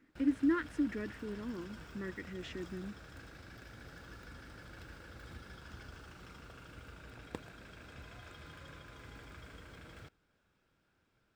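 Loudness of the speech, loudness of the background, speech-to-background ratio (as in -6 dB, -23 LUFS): -37.5 LUFS, -52.0 LUFS, 14.5 dB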